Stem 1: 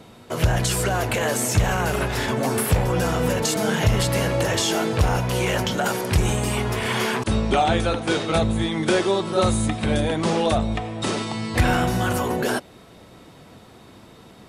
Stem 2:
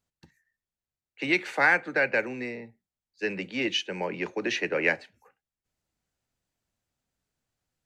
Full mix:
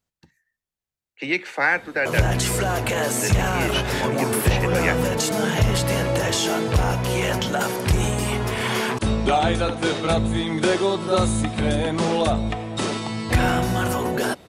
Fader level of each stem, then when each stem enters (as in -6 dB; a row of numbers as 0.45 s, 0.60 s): 0.0 dB, +1.5 dB; 1.75 s, 0.00 s